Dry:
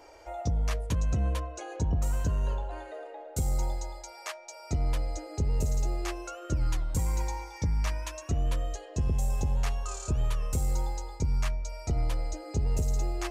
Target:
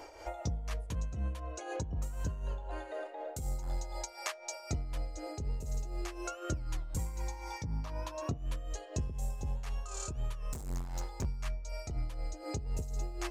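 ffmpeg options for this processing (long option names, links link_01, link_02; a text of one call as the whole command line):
ffmpeg -i in.wav -filter_complex "[0:a]asplit=3[link_01][link_02][link_03];[link_01]afade=type=out:start_time=3.62:duration=0.02[link_04];[link_02]aeval=exprs='0.0841*sin(PI/2*1.41*val(0)/0.0841)':channel_layout=same,afade=type=in:start_time=3.62:duration=0.02,afade=type=out:start_time=4.04:duration=0.02[link_05];[link_03]afade=type=in:start_time=4.04:duration=0.02[link_06];[link_04][link_05][link_06]amix=inputs=3:normalize=0,asplit=3[link_07][link_08][link_09];[link_07]afade=type=out:start_time=7.64:duration=0.02[link_10];[link_08]equalizer=frequency=125:width_type=o:width=1:gain=10,equalizer=frequency=250:width_type=o:width=1:gain=8,equalizer=frequency=500:width_type=o:width=1:gain=5,equalizer=frequency=1000:width_type=o:width=1:gain=8,equalizer=frequency=2000:width_type=o:width=1:gain=-5,equalizer=frequency=4000:width_type=o:width=1:gain=4,equalizer=frequency=8000:width_type=o:width=1:gain=-6,afade=type=in:start_time=7.64:duration=0.02,afade=type=out:start_time=8.36:duration=0.02[link_11];[link_09]afade=type=in:start_time=8.36:duration=0.02[link_12];[link_10][link_11][link_12]amix=inputs=3:normalize=0,asettb=1/sr,asplit=3[link_13][link_14][link_15];[link_13]atrim=end=10.534[link_16];[link_14]atrim=start=10.53:end=11.25,asetpts=PTS-STARTPTS,afade=type=in:duration=0.004:curve=qsin,afade=type=out:start_time=0.716:duration=0.004:curve=qsin,volume=34.5dB,asoftclip=hard,volume=-34.5dB[link_17];[link_15]atrim=start=11.246[link_18];[link_16][link_17]acrossfade=duration=0.004:curve1=hsin:curve2=qsin[link_19];[link_19][link_18]acrossfade=duration=0.004:curve1=qsin:curve2=hsin,bandreject=frequency=233.2:width_type=h:width=4,bandreject=frequency=466.4:width_type=h:width=4,bandreject=frequency=699.6:width_type=h:width=4,bandreject=frequency=932.8:width_type=h:width=4,acompressor=threshold=-39dB:ratio=4,tremolo=f=4:d=0.58,volume=5.5dB" out.wav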